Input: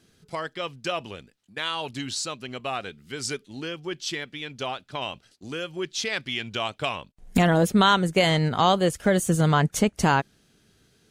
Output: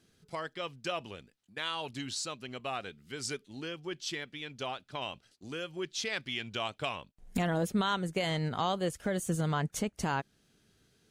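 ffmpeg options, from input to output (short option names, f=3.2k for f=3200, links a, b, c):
-af "alimiter=limit=-13.5dB:level=0:latency=1:release=409,volume=-6.5dB"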